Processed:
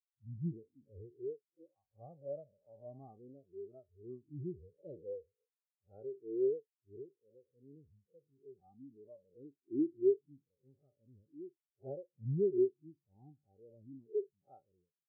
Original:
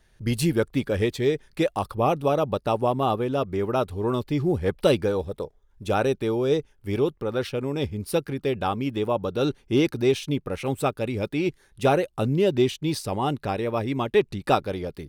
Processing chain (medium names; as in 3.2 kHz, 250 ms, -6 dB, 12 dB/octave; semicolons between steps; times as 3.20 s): spectral blur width 147 ms; treble shelf 4.7 kHz +9.5 dB; spectral contrast expander 4:1; trim -7 dB